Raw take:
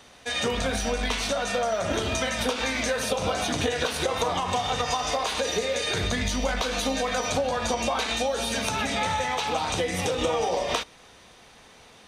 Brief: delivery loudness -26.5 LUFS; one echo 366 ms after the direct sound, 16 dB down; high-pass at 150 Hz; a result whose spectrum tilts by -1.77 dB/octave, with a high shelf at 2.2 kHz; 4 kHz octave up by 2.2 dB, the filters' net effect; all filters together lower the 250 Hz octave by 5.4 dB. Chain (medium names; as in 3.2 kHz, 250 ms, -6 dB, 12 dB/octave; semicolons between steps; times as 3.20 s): high-pass 150 Hz; peaking EQ 250 Hz -5.5 dB; treble shelf 2.2 kHz -4.5 dB; peaking EQ 4 kHz +6.5 dB; delay 366 ms -16 dB